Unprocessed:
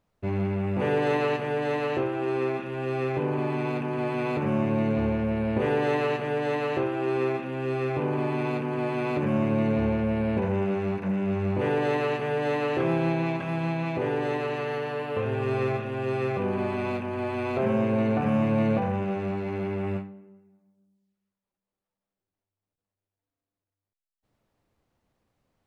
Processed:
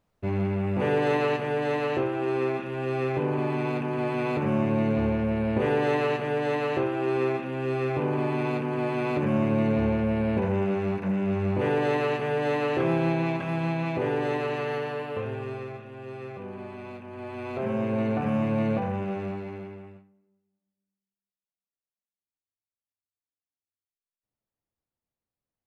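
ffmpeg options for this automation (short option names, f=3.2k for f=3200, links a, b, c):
-af "volume=9.5dB,afade=t=out:st=14.76:d=0.9:silence=0.266073,afade=t=in:st=17:d=1.01:silence=0.354813,afade=t=out:st=19.21:d=0.48:silence=0.375837,afade=t=out:st=19.69:d=0.25:silence=0.354813"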